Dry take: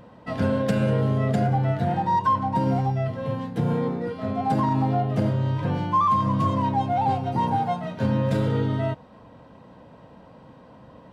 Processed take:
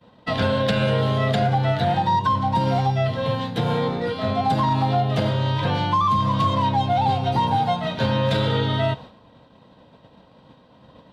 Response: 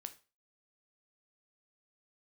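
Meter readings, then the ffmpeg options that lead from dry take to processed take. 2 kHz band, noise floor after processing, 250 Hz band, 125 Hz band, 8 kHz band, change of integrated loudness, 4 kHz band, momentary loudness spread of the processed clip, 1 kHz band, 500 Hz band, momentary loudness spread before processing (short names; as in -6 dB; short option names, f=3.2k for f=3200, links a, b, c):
+7.5 dB, -53 dBFS, -0.5 dB, +2.0 dB, n/a, +2.5 dB, +14.0 dB, 4 LU, +3.0 dB, +4.0 dB, 6 LU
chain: -filter_complex "[0:a]agate=range=-33dB:threshold=-39dB:ratio=3:detection=peak,equalizer=f=3.7k:w=1.9:g=12,acrossover=split=150|470|4600[a][b][c][d];[a]acompressor=threshold=-32dB:ratio=4[e];[b]acompressor=threshold=-40dB:ratio=4[f];[c]acompressor=threshold=-28dB:ratio=4[g];[d]acompressor=threshold=-53dB:ratio=4[h];[e][f][g][h]amix=inputs=4:normalize=0,asplit=2[i][j];[1:a]atrim=start_sample=2205[k];[j][k]afir=irnorm=-1:irlink=0,volume=-1dB[l];[i][l]amix=inputs=2:normalize=0,volume=4dB"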